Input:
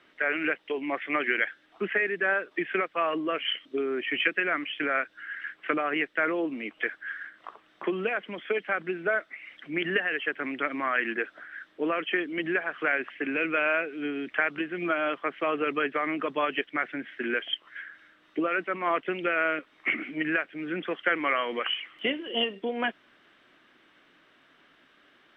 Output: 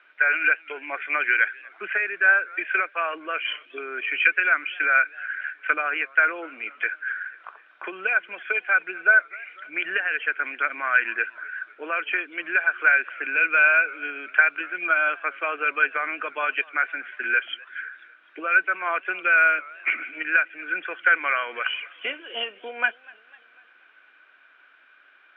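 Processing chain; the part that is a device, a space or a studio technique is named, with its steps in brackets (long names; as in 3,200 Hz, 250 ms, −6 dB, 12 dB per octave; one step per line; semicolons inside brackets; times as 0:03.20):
tin-can telephone (band-pass filter 610–2,900 Hz; hollow resonant body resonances 1,500/2,400 Hz, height 15 dB, ringing for 25 ms)
feedback echo with a swinging delay time 248 ms, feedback 54%, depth 163 cents, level −24 dB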